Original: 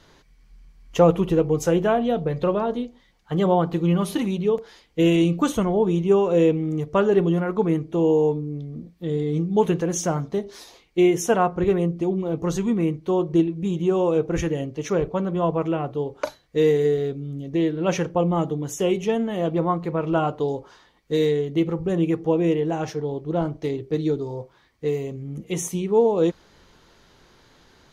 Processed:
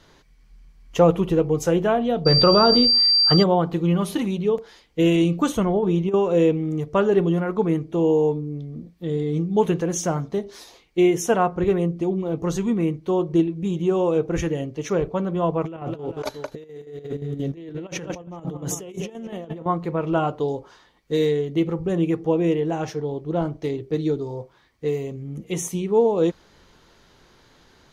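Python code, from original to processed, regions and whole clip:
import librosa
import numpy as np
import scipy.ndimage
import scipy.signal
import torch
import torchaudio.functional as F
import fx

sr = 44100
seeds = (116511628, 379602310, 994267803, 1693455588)

y = fx.peak_eq(x, sr, hz=1300.0, db=11.5, octaves=0.21, at=(2.25, 3.42), fade=0.02)
y = fx.dmg_tone(y, sr, hz=4700.0, level_db=-26.0, at=(2.25, 3.42), fade=0.02)
y = fx.env_flatten(y, sr, amount_pct=70, at=(2.25, 3.42), fade=0.02)
y = fx.chain(y, sr, fx.peak_eq(hz=8300.0, db=-8.5, octaves=0.76),
    fx.over_compress(threshold_db=-19.0, ratio=-0.5), at=(5.6, 6.14))
y = fx.chain(y, sr, fx.echo_multitap(ms=(207, 393), db=(-13.5, -19.0)),
    fx.over_compress(threshold_db=-32.0, ratio=-1.0),
    fx.chopper(hz=5.7, depth_pct=60, duty_pct=70), at=(15.64, 19.66))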